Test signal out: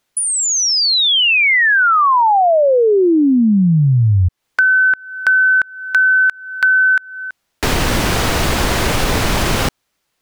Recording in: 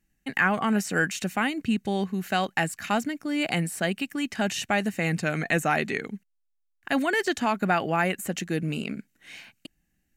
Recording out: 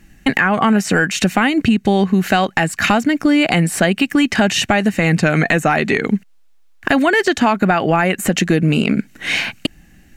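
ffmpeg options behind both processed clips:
ffmpeg -i in.wav -af "acompressor=threshold=-37dB:ratio=16,apsyclip=32.5dB,highshelf=frequency=7000:gain=-10,volume=-5.5dB" out.wav

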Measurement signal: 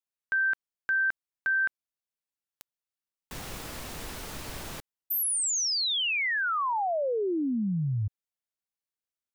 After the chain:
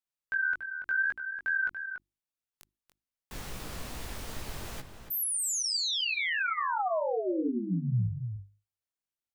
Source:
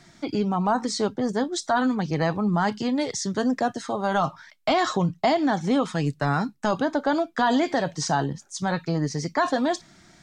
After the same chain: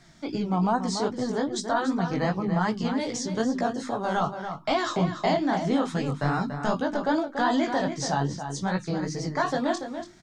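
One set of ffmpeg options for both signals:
ffmpeg -i in.wav -filter_complex "[0:a]lowshelf=frequency=110:gain=7.5,bandreject=frequency=50:width_type=h:width=6,bandreject=frequency=100:width_type=h:width=6,bandreject=frequency=150:width_type=h:width=6,bandreject=frequency=200:width_type=h:width=6,bandreject=frequency=250:width_type=h:width=6,bandreject=frequency=300:width_type=h:width=6,bandreject=frequency=350:width_type=h:width=6,flanger=delay=15.5:depth=7:speed=2.5,asplit=2[link_01][link_02];[link_02]adelay=285.7,volume=-8dB,highshelf=frequency=4000:gain=-6.43[link_03];[link_01][link_03]amix=inputs=2:normalize=0" out.wav

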